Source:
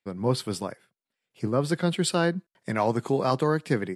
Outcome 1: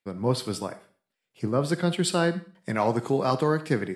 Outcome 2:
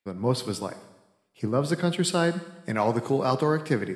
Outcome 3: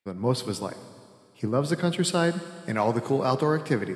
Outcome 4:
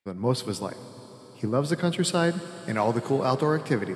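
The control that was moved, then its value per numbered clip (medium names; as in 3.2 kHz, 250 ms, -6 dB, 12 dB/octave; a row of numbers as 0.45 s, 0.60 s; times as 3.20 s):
algorithmic reverb, RT60: 0.42 s, 1 s, 2.1 s, 5.1 s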